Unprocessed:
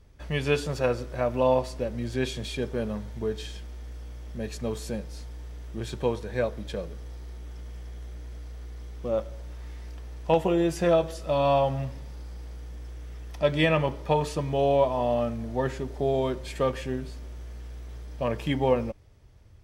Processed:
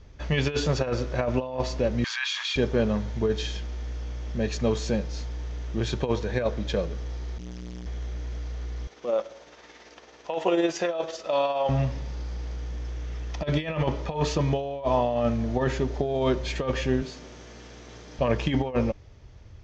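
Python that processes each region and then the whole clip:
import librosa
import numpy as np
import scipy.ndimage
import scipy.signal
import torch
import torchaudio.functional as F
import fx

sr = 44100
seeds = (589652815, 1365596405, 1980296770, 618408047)

y = fx.chain(x, sr, fx.steep_highpass(hz=1000.0, slope=48),
    fx.high_shelf(hz=6000.0, db=-11.5),
    fx.env_flatten(amount_pct=70), at=(2.04, 2.56))
y = fx.chain(y, sr, fx.high_shelf(hz=2300.0, db=10.5),
    fx.transformer_sat(knee_hz=260.0), at=(7.38, 7.86))
y = fx.chain(y, sr, fx.highpass(hz=390.0, slope=12),
    fx.tremolo(hz=18.0, depth=0.46), at=(8.87, 11.69))
y = fx.chain(y, sr, fx.highpass(hz=160.0, slope=12),
    fx.high_shelf(hz=9000.0, db=11.5), at=(17.02, 18.19))
y = scipy.signal.sosfilt(scipy.signal.ellip(4, 1.0, 40, 6700.0, 'lowpass', fs=sr, output='sos'), y)
y = fx.over_compress(y, sr, threshold_db=-28.0, ratio=-0.5)
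y = y * librosa.db_to_amplitude(5.0)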